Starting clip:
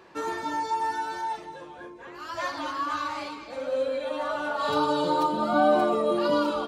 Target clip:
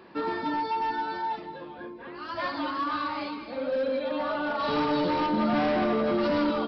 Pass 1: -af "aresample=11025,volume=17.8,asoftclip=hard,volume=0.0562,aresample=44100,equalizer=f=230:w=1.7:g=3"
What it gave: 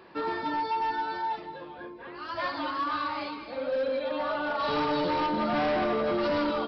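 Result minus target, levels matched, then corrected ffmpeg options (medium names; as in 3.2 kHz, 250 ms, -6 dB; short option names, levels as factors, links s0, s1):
250 Hz band -3.0 dB
-af "aresample=11025,volume=17.8,asoftclip=hard,volume=0.0562,aresample=44100,equalizer=f=230:w=1.7:g=9.5"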